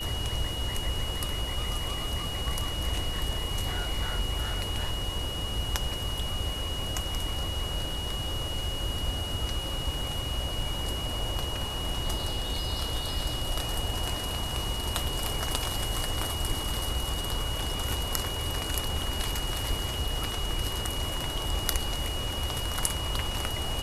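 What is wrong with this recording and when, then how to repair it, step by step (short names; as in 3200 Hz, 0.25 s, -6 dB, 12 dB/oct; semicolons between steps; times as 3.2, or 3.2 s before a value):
tone 2900 Hz -35 dBFS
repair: notch 2900 Hz, Q 30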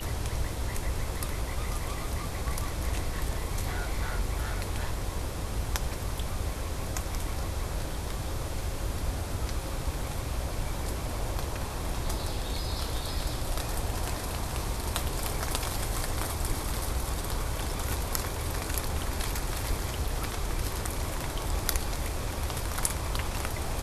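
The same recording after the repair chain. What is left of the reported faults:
none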